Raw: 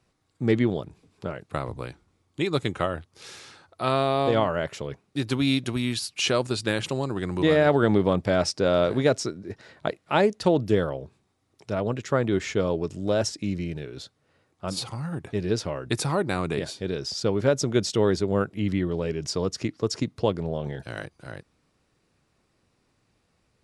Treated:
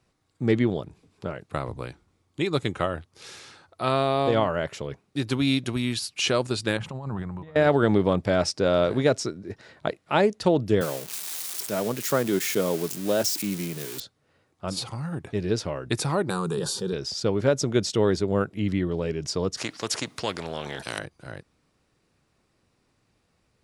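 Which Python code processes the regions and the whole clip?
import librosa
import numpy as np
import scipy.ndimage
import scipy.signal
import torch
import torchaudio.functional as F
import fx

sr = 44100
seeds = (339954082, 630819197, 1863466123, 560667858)

y = fx.chain(x, sr, fx.curve_eq(hz=(210.0, 320.0, 890.0, 4300.0), db=(0, -13, 0, -16)),
    fx.over_compress(threshold_db=-33.0, ratio=-0.5), at=(6.77, 7.56))
y = fx.chain(y, sr, fx.crossing_spikes(level_db=-22.0),
    fx.highpass(hz=140.0, slope=24), at=(10.81, 14.0))
y = fx.chain(y, sr, fx.high_shelf(hz=8500.0, db=11.5),
    fx.fixed_phaser(hz=430.0, stages=8),
    fx.env_flatten(amount_pct=70), at=(16.3, 16.93))
y = fx.chain(y, sr, fx.highpass(hz=350.0, slope=6),
    fx.spectral_comp(ratio=2.0), at=(19.57, 20.99))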